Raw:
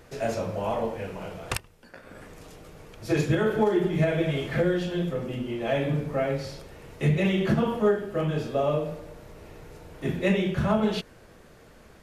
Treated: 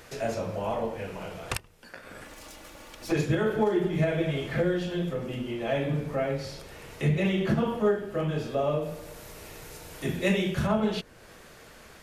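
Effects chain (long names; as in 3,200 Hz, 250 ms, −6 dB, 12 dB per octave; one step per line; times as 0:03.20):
0:02.24–0:03.12: lower of the sound and its delayed copy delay 3.5 ms
0:08.81–0:10.66: high-shelf EQ 6,500 Hz → 3,500 Hz +10.5 dB
one half of a high-frequency compander encoder only
level −2 dB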